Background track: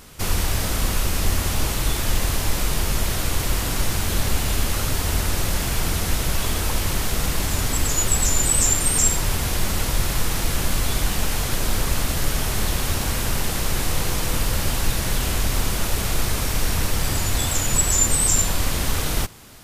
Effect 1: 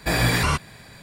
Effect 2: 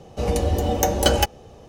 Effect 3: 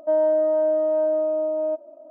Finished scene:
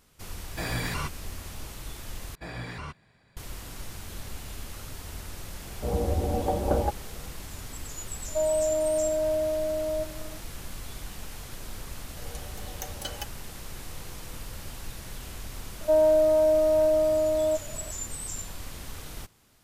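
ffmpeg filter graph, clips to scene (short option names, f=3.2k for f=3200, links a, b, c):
-filter_complex "[1:a]asplit=2[a][b];[2:a]asplit=2[c][d];[3:a]asplit=2[e][f];[0:a]volume=-17.5dB[g];[b]aemphasis=mode=reproduction:type=50fm[h];[c]lowpass=f=1.1k:w=0.5412,lowpass=f=1.1k:w=1.3066[i];[e]acrossover=split=310|1300[j][k][l];[j]adelay=350[m];[l]adelay=750[n];[m][k][n]amix=inputs=3:normalize=0[o];[d]equalizer=f=240:w=0.35:g=-12.5[p];[g]asplit=2[q][r];[q]atrim=end=2.354[s];[h]atrim=end=1.02,asetpts=PTS-STARTPTS,volume=-17dB[t];[r]atrim=start=3.366[u];[a]atrim=end=1.02,asetpts=PTS-STARTPTS,volume=-11dB,afade=t=in:d=0.004:c=hsin,afade=t=out:st=1.016:d=0.004:c=hsin,adelay=510[v];[i]atrim=end=1.68,asetpts=PTS-STARTPTS,volume=-5.5dB,afade=t=in:d=0.004:c=hsin,afade=t=out:st=1.676:d=0.004:c=hsin,adelay=249165S[w];[o]atrim=end=2.1,asetpts=PTS-STARTPTS,volume=-5dB,afade=t=in:d=0.004:c=hsin,afade=t=out:st=2.096:d=0.004:c=hsin,adelay=8280[x];[p]atrim=end=1.68,asetpts=PTS-STARTPTS,volume=-14.5dB,afade=t=in:d=0.004:c=hsin,afade=t=out:st=1.676:d=0.004:c=hsin,adelay=11990[y];[f]atrim=end=2.1,asetpts=PTS-STARTPTS,volume=-0.5dB,afade=t=in:d=0.004:c=hsin,afade=t=out:st=2.096:d=0.004:c=hsin,adelay=15810[z];[s][t]acrossfade=d=0.004:c1=hsin:c2=hsin[aa];[aa][u]acrossfade=d=0.004:c1=hsin:c2=hsin[ab];[ab][v][w][x][y][z]amix=inputs=6:normalize=0"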